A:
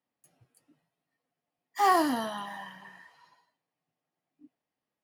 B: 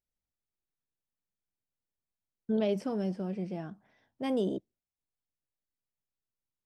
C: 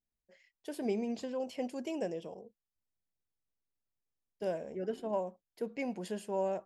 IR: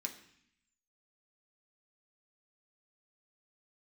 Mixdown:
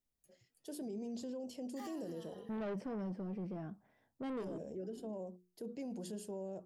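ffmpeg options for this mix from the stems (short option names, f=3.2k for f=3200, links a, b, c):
-filter_complex "[0:a]alimiter=limit=-20.5dB:level=0:latency=1,volume=-9.5dB,afade=t=out:st=1.73:d=0.23:silence=0.266073[a];[1:a]highshelf=f=2.4k:g=-11.5,asoftclip=type=tanh:threshold=-32.5dB,volume=-2dB[b];[2:a]equalizer=f=2.2k:w=1.4:g=-14,bandreject=f=60:t=h:w=6,bandreject=f=120:t=h:w=6,bandreject=f=180:t=h:w=6,bandreject=f=240:t=h:w=6,bandreject=f=300:t=h:w=6,bandreject=f=360:t=h:w=6,bandreject=f=420:t=h:w=6,bandreject=f=480:t=h:w=6,acrossover=split=440[c][d];[d]acompressor=threshold=-41dB:ratio=6[e];[c][e]amix=inputs=2:normalize=0,volume=2dB[f];[a][f]amix=inputs=2:normalize=0,equalizer=f=970:w=0.83:g=-8,alimiter=level_in=8.5dB:limit=-24dB:level=0:latency=1:release=71,volume=-8.5dB,volume=0dB[g];[b][g]amix=inputs=2:normalize=0,alimiter=level_in=12.5dB:limit=-24dB:level=0:latency=1:release=20,volume=-12.5dB"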